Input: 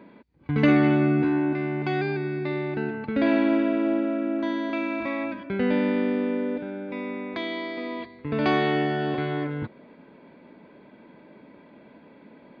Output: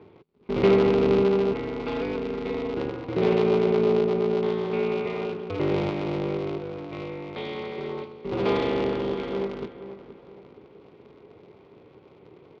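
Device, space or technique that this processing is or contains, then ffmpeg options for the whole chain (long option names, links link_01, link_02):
ring modulator pedal into a guitar cabinet: -filter_complex "[0:a]asettb=1/sr,asplit=3[link_01][link_02][link_03];[link_01]atrim=end=5.904[link_04];[link_02]atrim=start=5.9:end=7.56,asetpts=PTS-STARTPTS,afade=type=in:duration=0.004:curve=qsin,afade=type=out:start_time=1.656:duration=0.004:curve=qsin,highpass=frequency=270:poles=1[link_05];[link_03]atrim=start=7.556[link_06];[link_04][link_05]acrossfade=duration=0.004:curve1=hsin:curve2=qsin[link_07];[link_07][link_06]acrossfade=duration=0.004:curve1=qsin:curve2=hsin,aeval=exprs='val(0)*sgn(sin(2*PI*100*n/s))':channel_layout=same,highpass=78,equalizer=frequency=420:width_type=q:width=4:gain=10,equalizer=frequency=660:width_type=q:width=4:gain=-4,equalizer=frequency=1700:width_type=q:width=4:gain=-10,lowpass=frequency=4300:width=0.5412,lowpass=frequency=4300:width=1.3066,asplit=2[link_08][link_09];[link_09]adelay=475,lowpass=frequency=2500:poles=1,volume=-12dB,asplit=2[link_10][link_11];[link_11]adelay=475,lowpass=frequency=2500:poles=1,volume=0.39,asplit=2[link_12][link_13];[link_13]adelay=475,lowpass=frequency=2500:poles=1,volume=0.39,asplit=2[link_14][link_15];[link_15]adelay=475,lowpass=frequency=2500:poles=1,volume=0.39[link_16];[link_08][link_10][link_12][link_14][link_16]amix=inputs=5:normalize=0,volume=-3.5dB"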